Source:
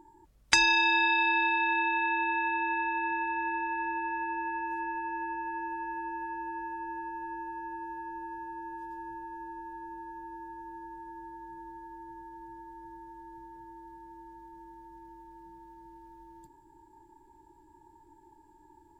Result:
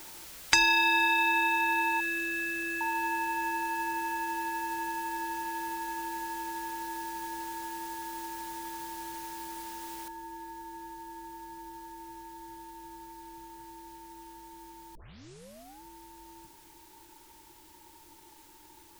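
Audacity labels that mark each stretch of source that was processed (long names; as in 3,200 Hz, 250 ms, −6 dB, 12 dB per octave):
2.000000	2.810000	linear-phase brick-wall band-stop 460–1,300 Hz
10.080000	10.080000	noise floor change −47 dB −58 dB
14.950000	14.950000	tape start 0.88 s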